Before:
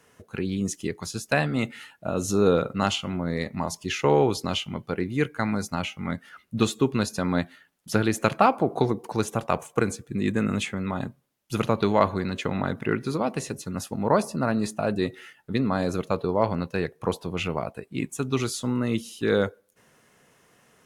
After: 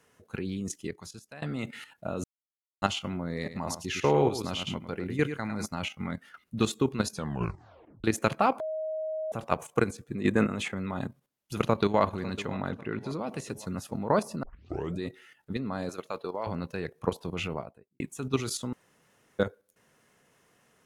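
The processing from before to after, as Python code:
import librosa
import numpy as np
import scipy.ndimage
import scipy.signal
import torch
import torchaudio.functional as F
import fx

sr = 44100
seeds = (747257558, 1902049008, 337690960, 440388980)

y = fx.echo_single(x, sr, ms=104, db=-8.0, at=(3.44, 5.65), fade=0.02)
y = fx.peak_eq(y, sr, hz=800.0, db=7.5, octaves=2.2, at=(10.09, 10.74))
y = fx.echo_throw(y, sr, start_s=11.55, length_s=0.46, ms=550, feedback_pct=50, wet_db=-14.0)
y = fx.high_shelf(y, sr, hz=7500.0, db=-11.5, at=(12.69, 13.19))
y = fx.highpass(y, sr, hz=780.0, slope=6, at=(15.89, 16.47))
y = fx.studio_fade_out(y, sr, start_s=17.4, length_s=0.6)
y = fx.edit(y, sr, fx.fade_out_to(start_s=0.52, length_s=0.9, floor_db=-24.0),
    fx.silence(start_s=2.24, length_s=0.58),
    fx.tape_stop(start_s=7.12, length_s=0.92),
    fx.bleep(start_s=8.6, length_s=0.72, hz=629.0, db=-24.0),
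    fx.tape_start(start_s=14.43, length_s=0.58),
    fx.room_tone_fill(start_s=18.73, length_s=0.66), tone=tone)
y = fx.level_steps(y, sr, step_db=11)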